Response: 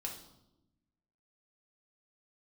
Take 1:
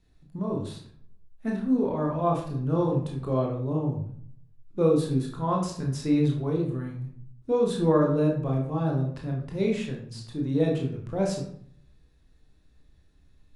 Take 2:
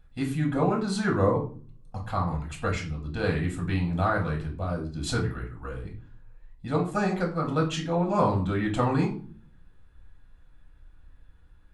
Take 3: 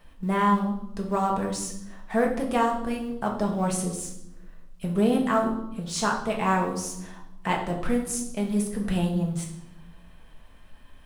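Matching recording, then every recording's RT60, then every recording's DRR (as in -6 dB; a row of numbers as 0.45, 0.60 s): 3; 0.60, 0.40, 0.90 s; -1.0, -1.5, 0.0 dB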